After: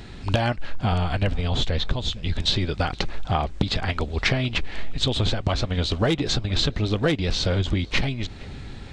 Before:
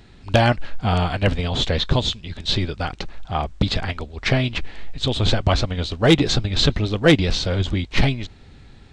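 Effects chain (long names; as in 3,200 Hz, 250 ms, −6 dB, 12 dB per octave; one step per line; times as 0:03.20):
0:00.92–0:02.42: low-shelf EQ 64 Hz +10.5 dB
downward compressor 12 to 1, threshold −27 dBFS, peak gain reduction 21.5 dB
on a send: tape delay 466 ms, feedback 55%, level −22 dB, low-pass 2,700 Hz
on the sum: level +8 dB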